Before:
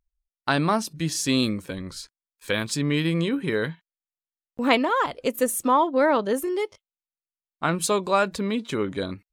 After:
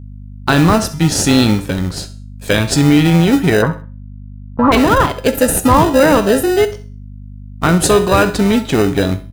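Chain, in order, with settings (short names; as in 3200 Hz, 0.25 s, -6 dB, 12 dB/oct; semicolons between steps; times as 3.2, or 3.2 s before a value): in parallel at -4.5 dB: sample-and-hold 40×; on the sum: resonator 59 Hz, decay 0.41 s, harmonics odd, mix 60%; hum 50 Hz, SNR 21 dB; bell 99 Hz +5.5 dB 0.75 oct; hard clip -16 dBFS, distortion -24 dB; 3.62–4.72 synth low-pass 1100 Hz, resonance Q 5.5; on a send: feedback echo 65 ms, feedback 33%, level -17 dB; on the sum: maximiser +17.5 dB; gain -1 dB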